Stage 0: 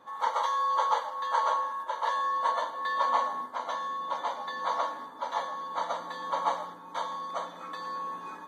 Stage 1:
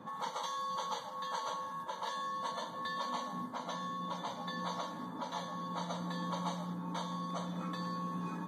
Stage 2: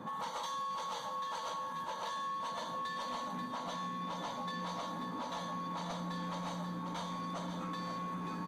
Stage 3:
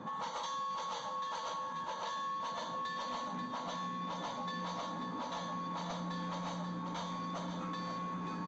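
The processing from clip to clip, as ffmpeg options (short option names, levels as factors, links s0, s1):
-filter_complex "[0:a]lowshelf=f=390:g=8.5,acrossover=split=170|3000[s0][s1][s2];[s1]acompressor=threshold=0.00708:ratio=3[s3];[s0][s3][s2]amix=inputs=3:normalize=0,equalizer=f=180:w=1.2:g=14.5"
-af "asoftclip=type=tanh:threshold=0.0168,aecho=1:1:88|536:0.119|0.376,acompressor=threshold=0.00794:ratio=6,volume=1.78"
-af "aresample=16000,aresample=44100"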